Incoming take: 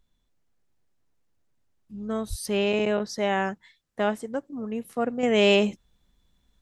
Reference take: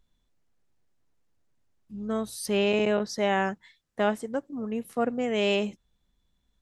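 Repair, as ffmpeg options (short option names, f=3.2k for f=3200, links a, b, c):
-filter_complex "[0:a]asplit=3[a][b][c];[a]afade=t=out:st=2.29:d=0.02[d];[b]highpass=f=140:w=0.5412,highpass=f=140:w=1.3066,afade=t=in:st=2.29:d=0.02,afade=t=out:st=2.41:d=0.02[e];[c]afade=t=in:st=2.41:d=0.02[f];[d][e][f]amix=inputs=3:normalize=0,asetnsamples=n=441:p=0,asendcmd='5.23 volume volume -6dB',volume=0dB"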